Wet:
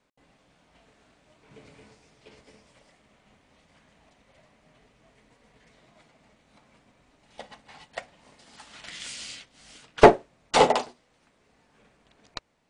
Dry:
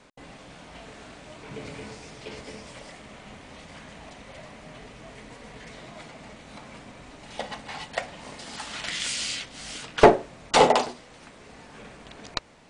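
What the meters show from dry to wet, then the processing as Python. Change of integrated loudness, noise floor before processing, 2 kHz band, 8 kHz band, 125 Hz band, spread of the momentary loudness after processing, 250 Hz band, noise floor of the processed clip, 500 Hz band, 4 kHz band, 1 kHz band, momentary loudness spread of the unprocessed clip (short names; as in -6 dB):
+3.0 dB, -49 dBFS, -2.0 dB, -5.5 dB, -1.0 dB, 24 LU, -0.5 dB, -66 dBFS, 0.0 dB, -4.5 dB, -0.5 dB, 25 LU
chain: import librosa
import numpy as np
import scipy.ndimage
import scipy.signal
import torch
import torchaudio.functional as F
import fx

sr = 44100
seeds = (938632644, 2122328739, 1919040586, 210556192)

y = fx.upward_expand(x, sr, threshold_db=-46.0, expansion=1.5)
y = F.gain(torch.from_numpy(y), 2.0).numpy()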